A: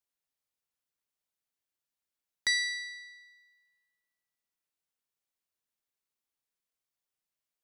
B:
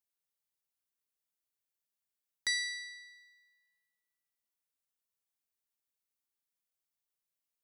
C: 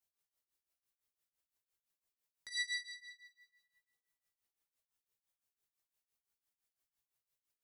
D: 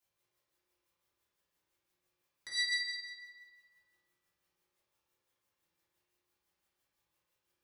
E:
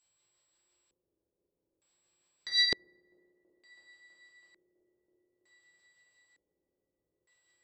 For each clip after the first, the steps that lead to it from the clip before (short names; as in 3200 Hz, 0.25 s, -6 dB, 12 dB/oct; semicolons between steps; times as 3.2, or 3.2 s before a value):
high shelf 7500 Hz +7.5 dB; gain -5.5 dB
limiter -32 dBFS, peak gain reduction 11 dB; chorus voices 6, 0.46 Hz, delay 18 ms, depth 1.7 ms; tremolo triangle 5.9 Hz, depth 95%; gain +7.5 dB
reverb RT60 2.0 s, pre-delay 3 ms, DRR -9 dB; gain +2.5 dB
band-limited delay 0.327 s, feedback 84%, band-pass 410 Hz, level -6.5 dB; whine 7700 Hz -68 dBFS; LFO low-pass square 0.55 Hz 400–4300 Hz; gain +2 dB